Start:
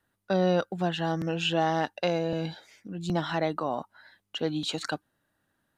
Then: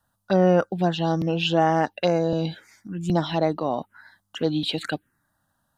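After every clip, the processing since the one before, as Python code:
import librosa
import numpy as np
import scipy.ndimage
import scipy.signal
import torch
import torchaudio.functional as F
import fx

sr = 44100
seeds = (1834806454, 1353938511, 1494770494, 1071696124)

y = fx.env_phaser(x, sr, low_hz=380.0, high_hz=4000.0, full_db=-21.5)
y = y * librosa.db_to_amplitude(6.5)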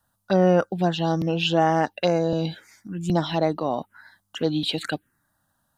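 y = fx.high_shelf(x, sr, hz=6000.0, db=4.0)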